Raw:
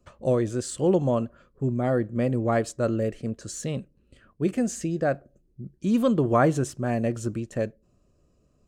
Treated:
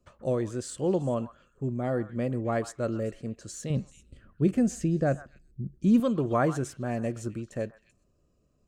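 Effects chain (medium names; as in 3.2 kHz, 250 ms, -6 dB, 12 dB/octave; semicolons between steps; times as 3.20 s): 3.70–6.00 s: bass shelf 260 Hz +12 dB; repeats whose band climbs or falls 129 ms, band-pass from 1.2 kHz, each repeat 1.4 oct, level -10.5 dB; trim -5 dB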